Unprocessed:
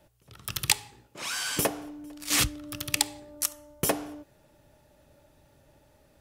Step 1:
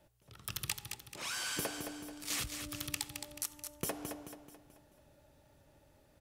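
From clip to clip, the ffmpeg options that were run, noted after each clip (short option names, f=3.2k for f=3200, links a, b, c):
-filter_complex "[0:a]acompressor=threshold=-29dB:ratio=5,asplit=2[a][b];[b]aecho=0:1:217|434|651|868|1085:0.447|0.197|0.0865|0.0381|0.0167[c];[a][c]amix=inputs=2:normalize=0,volume=-5.5dB"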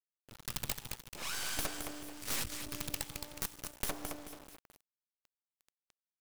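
-af "acrusher=bits=6:dc=4:mix=0:aa=0.000001,aeval=exprs='(mod(20*val(0)+1,2)-1)/20':c=same,volume=4dB"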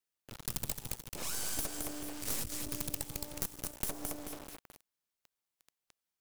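-filter_complex "[0:a]acrossover=split=760|5800[a][b][c];[a]acompressor=threshold=-43dB:ratio=4[d];[b]acompressor=threshold=-55dB:ratio=4[e];[c]acompressor=threshold=-40dB:ratio=4[f];[d][e][f]amix=inputs=3:normalize=0,volume=6dB"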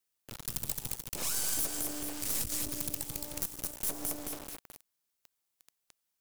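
-af "highshelf=f=5.2k:g=6,alimiter=limit=-19.5dB:level=0:latency=1:release=17,volume=2dB"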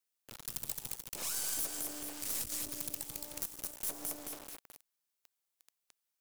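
-af "lowshelf=f=260:g=-7.5,volume=-3.5dB"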